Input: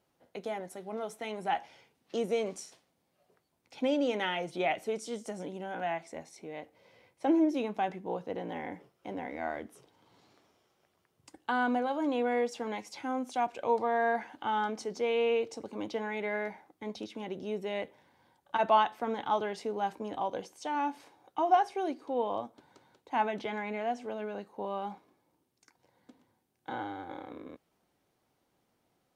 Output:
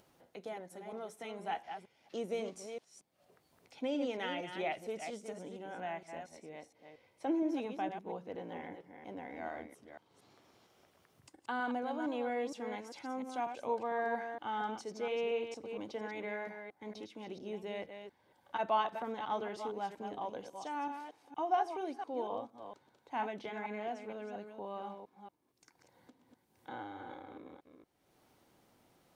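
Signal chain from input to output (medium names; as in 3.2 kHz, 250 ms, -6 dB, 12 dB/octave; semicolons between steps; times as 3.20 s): chunks repeated in reverse 232 ms, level -7 dB; upward compressor, threshold -48 dBFS; trim -7 dB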